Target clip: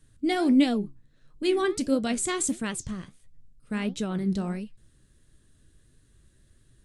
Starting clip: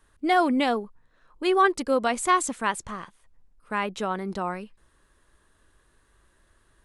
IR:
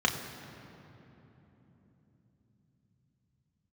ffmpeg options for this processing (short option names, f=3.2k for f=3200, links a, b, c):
-af "equalizer=f=125:t=o:w=1:g=10,equalizer=f=250:t=o:w=1:g=5,equalizer=f=1k:t=o:w=1:g=-12,equalizer=f=4k:t=o:w=1:g=4,equalizer=f=8k:t=o:w=1:g=7,flanger=delay=6.4:depth=9.7:regen=71:speed=1.5:shape=sinusoidal,lowshelf=f=180:g=8"